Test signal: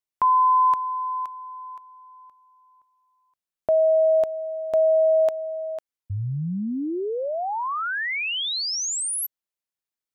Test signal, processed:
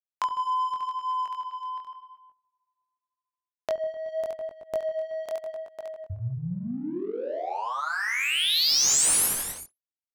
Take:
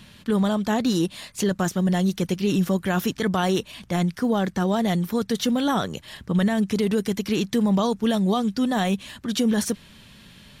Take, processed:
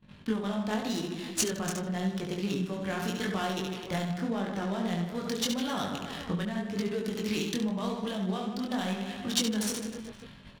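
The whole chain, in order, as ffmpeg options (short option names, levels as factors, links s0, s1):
-af "aecho=1:1:70|154|254.8|375.8|520.9:0.631|0.398|0.251|0.158|0.1,acompressor=threshold=0.0447:ratio=16:attack=36:release=614:knee=6:detection=rms,agate=range=0.112:threshold=0.00562:ratio=16:release=354:detection=peak,crystalizer=i=4:c=0,adynamicsmooth=sensitivity=6.5:basefreq=1000,flanger=delay=19.5:depth=5.1:speed=0.87,volume=1.26"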